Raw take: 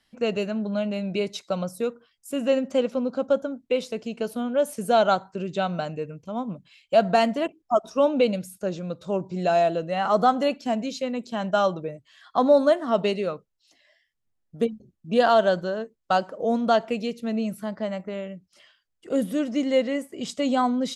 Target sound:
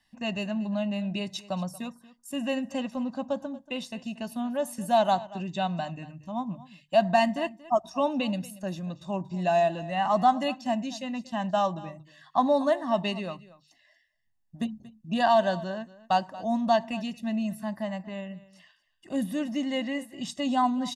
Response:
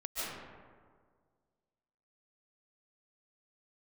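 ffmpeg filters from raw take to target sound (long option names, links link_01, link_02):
-filter_complex "[0:a]bandreject=frequency=50:width_type=h:width=6,bandreject=frequency=100:width_type=h:width=6,bandreject=frequency=150:width_type=h:width=6,aecho=1:1:1.1:0.95,asplit=2[link_01][link_02];[link_02]aecho=0:1:233:0.119[link_03];[link_01][link_03]amix=inputs=2:normalize=0,volume=-5dB"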